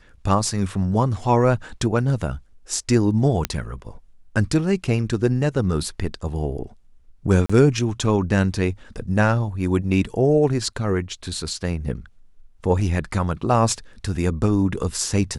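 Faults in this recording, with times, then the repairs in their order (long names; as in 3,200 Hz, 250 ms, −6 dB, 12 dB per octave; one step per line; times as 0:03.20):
0:03.45: click −6 dBFS
0:07.46–0:07.50: drop-out 35 ms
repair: click removal
repair the gap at 0:07.46, 35 ms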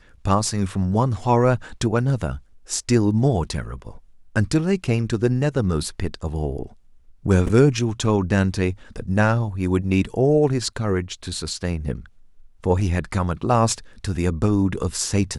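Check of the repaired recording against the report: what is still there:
none of them is left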